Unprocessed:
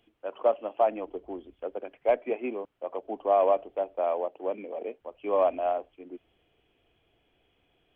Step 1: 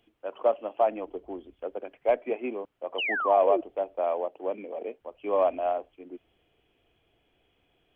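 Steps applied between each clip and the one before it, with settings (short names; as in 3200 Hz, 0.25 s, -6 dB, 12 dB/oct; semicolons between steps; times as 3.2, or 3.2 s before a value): painted sound fall, 2.98–3.61, 310–3100 Hz -29 dBFS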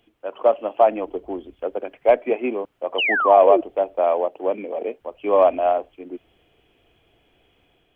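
AGC gain up to 3.5 dB; gain +5 dB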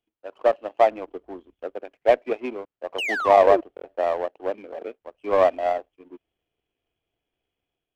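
power-law curve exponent 1.4; stuck buffer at 3.75, samples 1024, times 3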